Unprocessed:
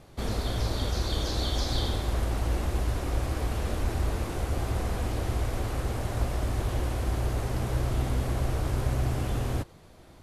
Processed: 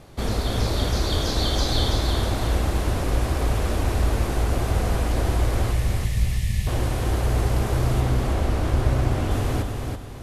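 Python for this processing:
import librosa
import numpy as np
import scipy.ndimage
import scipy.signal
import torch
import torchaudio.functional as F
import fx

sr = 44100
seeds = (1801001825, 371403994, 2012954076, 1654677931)

y = fx.spec_box(x, sr, start_s=5.72, length_s=0.95, low_hz=230.0, high_hz=1700.0, gain_db=-25)
y = fx.high_shelf(y, sr, hz=6700.0, db=-8.0, at=(8.0, 9.31))
y = fx.echo_feedback(y, sr, ms=330, feedback_pct=37, wet_db=-5)
y = F.gain(torch.from_numpy(y), 5.5).numpy()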